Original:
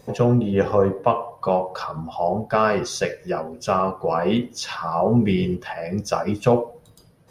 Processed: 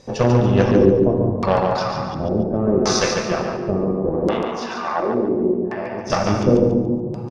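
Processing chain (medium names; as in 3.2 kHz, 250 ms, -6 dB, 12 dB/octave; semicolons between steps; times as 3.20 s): on a send at -1.5 dB: reverberation RT60 2.4 s, pre-delay 3 ms; on the sum: Chebyshev shaper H 6 -18 dB, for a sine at -3 dBFS; 4.27–6.10 s: three-band isolator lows -19 dB, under 340 Hz, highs -16 dB, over 2.3 kHz; LFO low-pass square 0.7 Hz 350–5500 Hz; feedback delay 142 ms, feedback 33%, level -5.5 dB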